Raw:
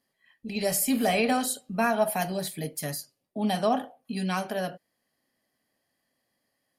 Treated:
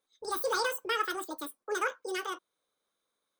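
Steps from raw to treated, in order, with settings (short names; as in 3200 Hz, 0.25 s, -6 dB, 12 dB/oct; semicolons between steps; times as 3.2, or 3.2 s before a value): wide varispeed 2×; gain -5.5 dB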